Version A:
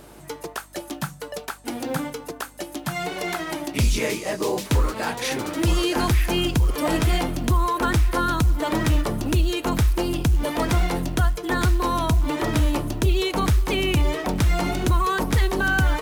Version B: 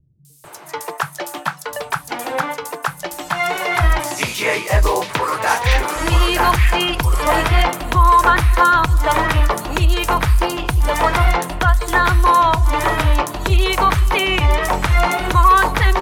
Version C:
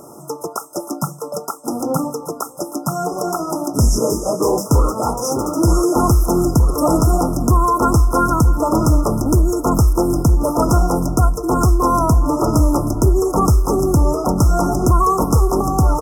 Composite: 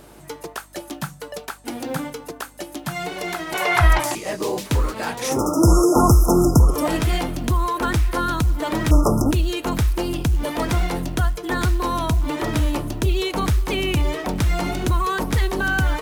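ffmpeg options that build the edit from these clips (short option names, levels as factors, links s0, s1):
-filter_complex "[2:a]asplit=2[s0][s1];[0:a]asplit=4[s2][s3][s4][s5];[s2]atrim=end=3.542[s6];[1:a]atrim=start=3.538:end=4.152[s7];[s3]atrim=start=4.148:end=5.42[s8];[s0]atrim=start=5.18:end=6.89[s9];[s4]atrim=start=6.65:end=8.912[s10];[s1]atrim=start=8.908:end=9.312[s11];[s5]atrim=start=9.308[s12];[s6][s7]acrossfade=d=0.004:c1=hsin:c2=hsin[s13];[s13][s8]acrossfade=d=0.004:c1=hsin:c2=hsin[s14];[s14][s9]acrossfade=d=0.24:c1=tri:c2=tri[s15];[s15][s10]acrossfade=d=0.24:c1=tri:c2=tri[s16];[s16][s11]acrossfade=d=0.004:c1=hsin:c2=hsin[s17];[s17][s12]acrossfade=d=0.004:c1=hsin:c2=hsin"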